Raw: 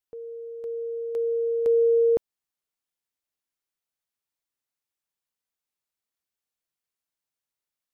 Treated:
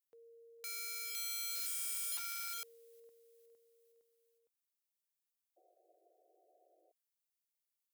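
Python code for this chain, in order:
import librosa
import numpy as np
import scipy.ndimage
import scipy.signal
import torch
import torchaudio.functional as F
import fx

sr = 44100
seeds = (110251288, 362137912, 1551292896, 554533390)

p1 = scipy.signal.sosfilt(scipy.signal.butter(4, 63.0, 'highpass', fs=sr, output='sos'), x)
p2 = fx.quant_dither(p1, sr, seeds[0], bits=8, dither='triangular', at=(1.55, 2.08))
p3 = p2 + fx.echo_feedback(p2, sr, ms=460, feedback_pct=59, wet_db=-18.0, dry=0)
p4 = (np.mod(10.0 ** (32.0 / 20.0) * p3 + 1.0, 2.0) - 1.0) / 10.0 ** (32.0 / 20.0)
p5 = fx.bass_treble(p4, sr, bass_db=6, treble_db=-4)
p6 = fx.spec_paint(p5, sr, seeds[1], shape='noise', start_s=5.56, length_s=1.36, low_hz=320.0, high_hz=760.0, level_db=-50.0)
y = np.diff(p6, prepend=0.0)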